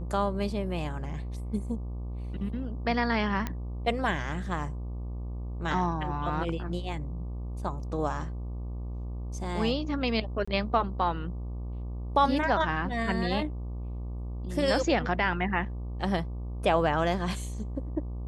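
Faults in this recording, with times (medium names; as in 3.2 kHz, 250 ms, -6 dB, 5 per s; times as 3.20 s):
buzz 60 Hz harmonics 20 -35 dBFS
3.47 s: pop -17 dBFS
10.45–10.47 s: dropout 25 ms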